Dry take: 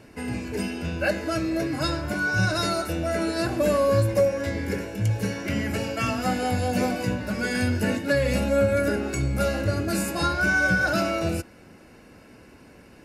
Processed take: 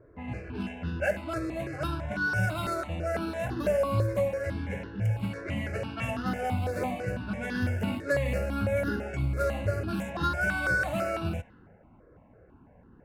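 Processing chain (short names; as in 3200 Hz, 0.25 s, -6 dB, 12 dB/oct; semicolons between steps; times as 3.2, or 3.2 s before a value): median filter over 9 samples; low-pass opened by the level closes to 860 Hz, open at -21.5 dBFS; step phaser 6 Hz 820–2300 Hz; gain -2 dB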